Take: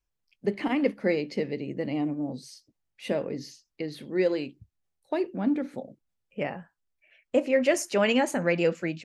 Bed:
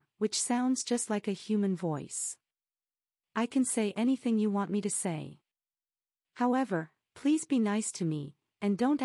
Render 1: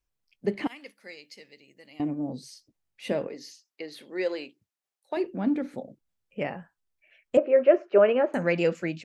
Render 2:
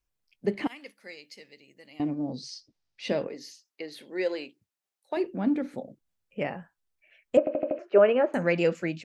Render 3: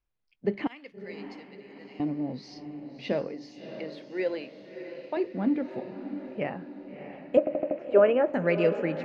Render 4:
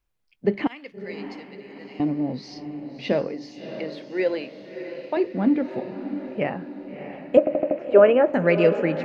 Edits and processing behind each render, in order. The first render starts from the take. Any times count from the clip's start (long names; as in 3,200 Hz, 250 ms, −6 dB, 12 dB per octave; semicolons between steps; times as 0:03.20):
0:00.67–0:02.00: first-order pre-emphasis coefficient 0.97; 0:03.27–0:05.17: Bessel high-pass filter 530 Hz; 0:07.37–0:08.34: loudspeaker in its box 240–2,200 Hz, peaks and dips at 260 Hz −7 dB, 390 Hz +9 dB, 610 Hz +7 dB, 870 Hz −6 dB, 1,300 Hz +4 dB, 2,000 Hz −9 dB
0:02.01–0:03.24: low-pass with resonance 5,100 Hz, resonance Q 2.5; 0:03.90–0:04.35: notch filter 1,200 Hz, Q 6.8; 0:07.39: stutter in place 0.08 s, 5 plays
high-frequency loss of the air 190 metres; feedback delay with all-pass diffusion 639 ms, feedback 54%, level −10 dB
level +6 dB; brickwall limiter −3 dBFS, peak gain reduction 1 dB